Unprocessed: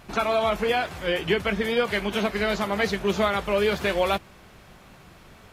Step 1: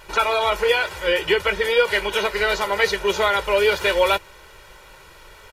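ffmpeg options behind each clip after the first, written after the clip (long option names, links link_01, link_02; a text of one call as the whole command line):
ffmpeg -i in.wav -af "equalizer=frequency=130:width=0.47:gain=-12.5,aecho=1:1:2.1:0.75,volume=5dB" out.wav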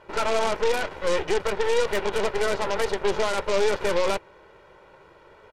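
ffmpeg -i in.wav -af "bandpass=frequency=380:width_type=q:width=0.6:csg=0,alimiter=limit=-17dB:level=0:latency=1:release=21,aeval=exprs='0.141*(cos(1*acos(clip(val(0)/0.141,-1,1)))-cos(1*PI/2))+0.0447*(cos(4*acos(clip(val(0)/0.141,-1,1)))-cos(4*PI/2))+0.0224*(cos(6*acos(clip(val(0)/0.141,-1,1)))-cos(6*PI/2))+0.0251*(cos(8*acos(clip(val(0)/0.141,-1,1)))-cos(8*PI/2))':channel_layout=same" out.wav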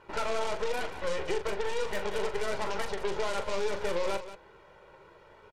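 ffmpeg -i in.wav -filter_complex "[0:a]acompressor=threshold=-24dB:ratio=3,flanger=delay=0.7:depth=1.6:regen=-62:speed=1.1:shape=triangular,asplit=2[link_01][link_02];[link_02]aecho=0:1:40.82|183.7:0.355|0.251[link_03];[link_01][link_03]amix=inputs=2:normalize=0" out.wav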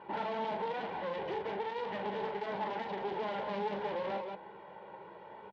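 ffmpeg -i in.wav -af "asoftclip=type=tanh:threshold=-35dB,highpass=160,equalizer=frequency=200:width_type=q:width=4:gain=9,equalizer=frequency=850:width_type=q:width=4:gain=9,equalizer=frequency=1300:width_type=q:width=4:gain=-8,equalizer=frequency=2500:width_type=q:width=4:gain=-5,lowpass=frequency=3300:width=0.5412,lowpass=frequency=3300:width=1.3066,volume=3.5dB" out.wav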